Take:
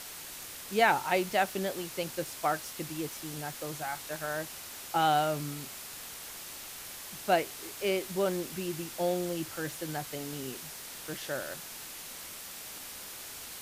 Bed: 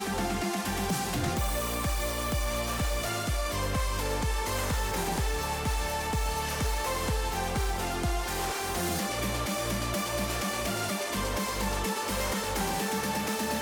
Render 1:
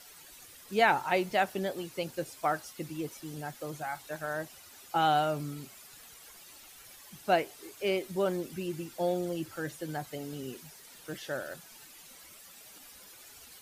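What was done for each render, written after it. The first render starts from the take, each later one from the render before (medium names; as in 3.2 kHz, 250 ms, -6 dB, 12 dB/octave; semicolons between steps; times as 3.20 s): noise reduction 12 dB, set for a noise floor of -44 dBFS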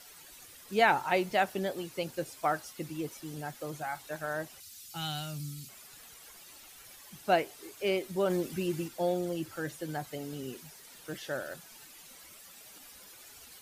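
4.60–5.69 s: FFT filter 160 Hz 0 dB, 470 Hz -20 dB, 1.1 kHz -15 dB, 4.5 kHz +4 dB; 8.30–8.88 s: gain +3.5 dB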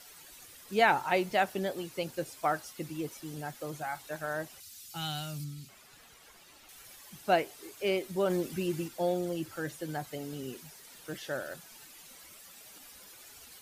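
5.44–6.69 s: treble shelf 5.4 kHz -9.5 dB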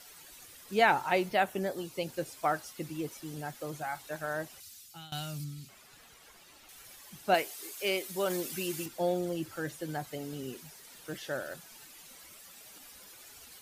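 1.28–2.08 s: peaking EQ 8.2 kHz -> 1.2 kHz -14 dB 0.28 oct; 4.67–5.12 s: fade out, to -20.5 dB; 7.34–8.86 s: tilt EQ +2.5 dB/octave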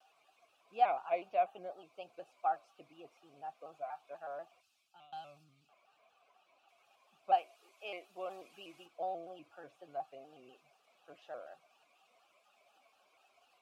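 vowel filter a; vibrato with a chosen wave square 4.1 Hz, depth 100 cents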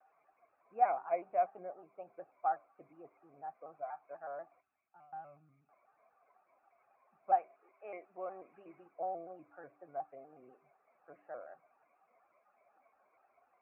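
steep low-pass 2.2 kHz 72 dB/octave; de-hum 98.49 Hz, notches 4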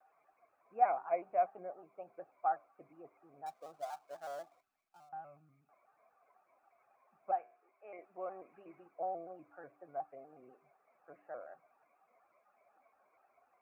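3.46–5.09 s: dead-time distortion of 0.086 ms; 7.31–7.99 s: feedback comb 120 Hz, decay 0.59 s, mix 50%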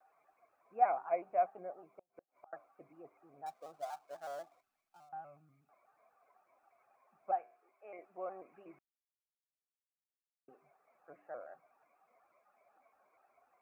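1.87–2.53 s: inverted gate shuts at -41 dBFS, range -35 dB; 8.79–10.48 s: mute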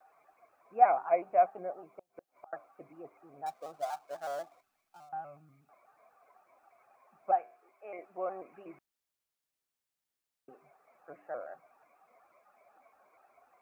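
trim +6.5 dB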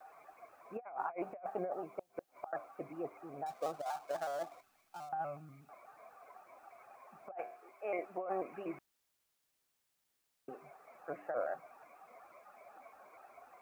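compressor with a negative ratio -41 dBFS, ratio -1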